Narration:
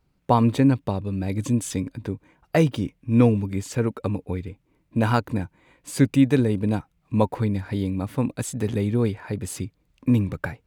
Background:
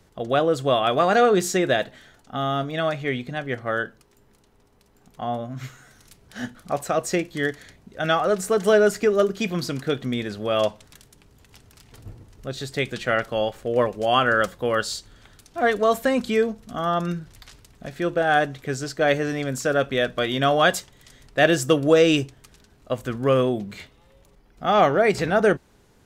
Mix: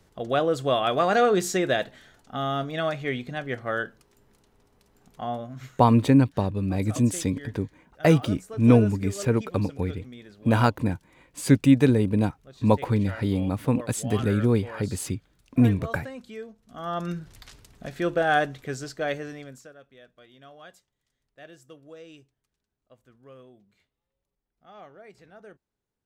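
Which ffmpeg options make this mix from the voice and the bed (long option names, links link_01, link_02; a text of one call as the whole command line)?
ffmpeg -i stem1.wav -i stem2.wav -filter_complex "[0:a]adelay=5500,volume=0.5dB[link_01];[1:a]volume=13.5dB,afade=type=out:start_time=5.25:duration=0.85:silence=0.177828,afade=type=in:start_time=16.63:duration=0.69:silence=0.149624,afade=type=out:start_time=18.18:duration=1.55:silence=0.0398107[link_02];[link_01][link_02]amix=inputs=2:normalize=0" out.wav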